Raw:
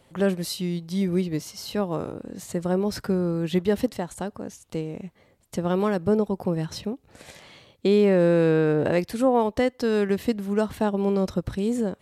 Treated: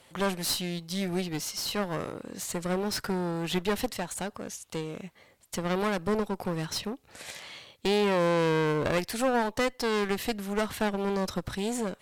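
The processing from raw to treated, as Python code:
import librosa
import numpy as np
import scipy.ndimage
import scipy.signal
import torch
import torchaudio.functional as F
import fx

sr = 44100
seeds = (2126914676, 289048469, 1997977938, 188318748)

y = fx.tilt_shelf(x, sr, db=-6.0, hz=660.0)
y = fx.clip_asym(y, sr, top_db=-32.5, bottom_db=-15.0)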